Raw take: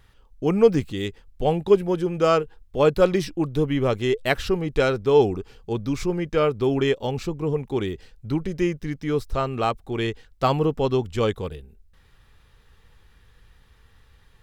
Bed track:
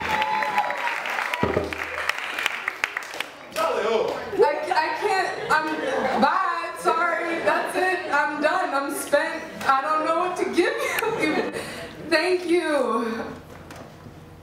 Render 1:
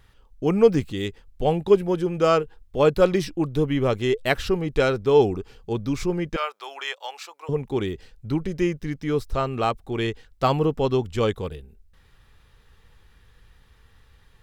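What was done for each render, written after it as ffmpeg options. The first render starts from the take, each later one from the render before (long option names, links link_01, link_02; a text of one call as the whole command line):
ffmpeg -i in.wav -filter_complex "[0:a]asettb=1/sr,asplit=3[link_01][link_02][link_03];[link_01]atrim=end=6.364[link_04];[link_02]atrim=start=6.36:end=7.49,asetpts=PTS-STARTPTS,afade=type=in:duration=0.004:curve=qsin,afade=type=out:start_time=1.126:duration=0.004:curve=qsin,highpass=frequency=780:width=0.5412,highpass=frequency=780:width=1.3066[link_05];[link_03]atrim=start=7.486[link_06];[link_04][link_05]acrossfade=duration=0.004:curve1=hsin:curve2=qsin[link_07];[link_07][link_06]acrossfade=duration=0.004:curve1=qsin:curve2=hsin" out.wav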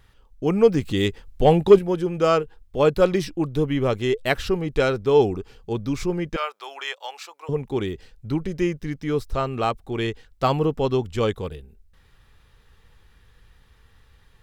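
ffmpeg -i in.wav -filter_complex "[0:a]asettb=1/sr,asplit=3[link_01][link_02][link_03];[link_01]atrim=end=0.854[link_04];[link_02]atrim=start=0.85:end=1.79,asetpts=PTS-STARTPTS,afade=type=in:duration=0.004:curve=qsin,afade=type=out:start_time=0.936:duration=0.004:curve=qsin,acontrast=65[link_05];[link_03]atrim=start=1.786[link_06];[link_04][link_05]acrossfade=duration=0.004:curve1=hsin:curve2=qsin[link_07];[link_07][link_06]acrossfade=duration=0.004:curve1=qsin:curve2=hsin" out.wav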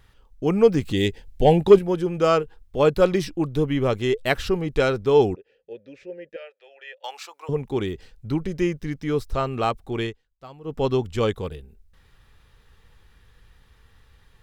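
ffmpeg -i in.wav -filter_complex "[0:a]asettb=1/sr,asplit=3[link_01][link_02][link_03];[link_01]atrim=end=0.944[link_04];[link_02]atrim=start=0.94:end=1.58,asetpts=PTS-STARTPTS,afade=type=in:duration=0.004:curve=qsin,afade=type=out:start_time=0.636:duration=0.004:curve=qsin,asuperstop=centerf=1200:order=4:qfactor=1.9[link_05];[link_03]atrim=start=1.576[link_06];[link_04][link_05]acrossfade=duration=0.004:curve1=hsin:curve2=qsin[link_07];[link_07][link_06]acrossfade=duration=0.004:curve1=qsin:curve2=hsin,asettb=1/sr,asplit=3[link_08][link_09][link_10];[link_08]atrim=end=5.354[link_11];[link_09]atrim=start=5.35:end=7.04,asetpts=PTS-STARTPTS,afade=type=in:duration=0.004:curve=qsin,afade=type=out:start_time=1.686:duration=0.004:curve=qsin,asplit=3[link_12][link_13][link_14];[link_12]bandpass=frequency=530:width_type=q:width=8,volume=0dB[link_15];[link_13]bandpass=frequency=1840:width_type=q:width=8,volume=-6dB[link_16];[link_14]bandpass=frequency=2480:width_type=q:width=8,volume=-9dB[link_17];[link_15][link_16][link_17]amix=inputs=3:normalize=0[link_18];[link_10]atrim=start=7.036[link_19];[link_11][link_18]acrossfade=duration=0.004:curve1=hsin:curve2=qsin[link_20];[link_20][link_19]acrossfade=duration=0.004:curve1=qsin:curve2=hsin,asplit=3[link_21][link_22][link_23];[link_21]atrim=end=10.17,asetpts=PTS-STARTPTS,afade=type=out:start_time=9.95:duration=0.22:curve=qsin:silence=0.0794328[link_24];[link_22]atrim=start=10.17:end=10.64,asetpts=PTS-STARTPTS,volume=-22dB[link_25];[link_23]atrim=start=10.64,asetpts=PTS-STARTPTS,afade=type=in:duration=0.22:curve=qsin:silence=0.0794328[link_26];[link_24][link_25][link_26]concat=n=3:v=0:a=1" out.wav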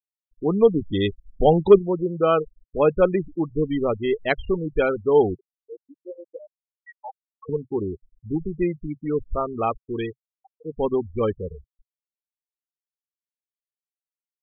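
ffmpeg -i in.wav -af "afftfilt=real='re*gte(hypot(re,im),0.0891)':imag='im*gte(hypot(re,im),0.0891)':win_size=1024:overlap=0.75,equalizer=frequency=130:width=7.3:gain=-15" out.wav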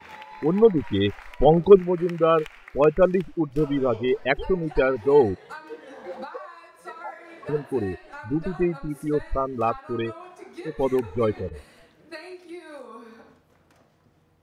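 ffmpeg -i in.wav -i bed.wav -filter_complex "[1:a]volume=-19dB[link_01];[0:a][link_01]amix=inputs=2:normalize=0" out.wav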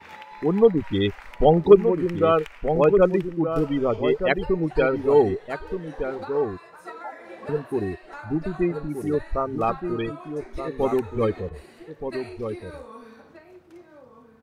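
ffmpeg -i in.wav -filter_complex "[0:a]asplit=2[link_01][link_02];[link_02]adelay=1224,volume=-7dB,highshelf=frequency=4000:gain=-27.6[link_03];[link_01][link_03]amix=inputs=2:normalize=0" out.wav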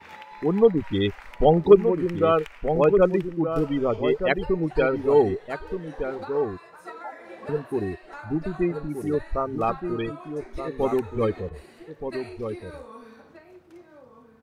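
ffmpeg -i in.wav -af "volume=-1dB" out.wav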